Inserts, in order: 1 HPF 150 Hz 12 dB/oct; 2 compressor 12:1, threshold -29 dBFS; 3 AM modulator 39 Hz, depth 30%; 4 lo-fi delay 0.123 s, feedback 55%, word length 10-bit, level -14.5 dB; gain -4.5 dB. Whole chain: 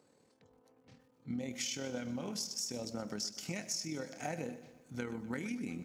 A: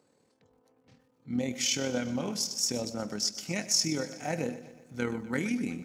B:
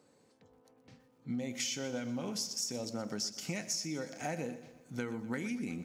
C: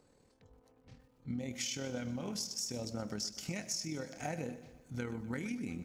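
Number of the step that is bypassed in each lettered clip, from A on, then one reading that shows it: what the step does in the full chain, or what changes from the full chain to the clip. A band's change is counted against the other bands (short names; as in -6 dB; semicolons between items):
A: 2, mean gain reduction 6.5 dB; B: 3, crest factor change -1.5 dB; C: 1, 125 Hz band +3.5 dB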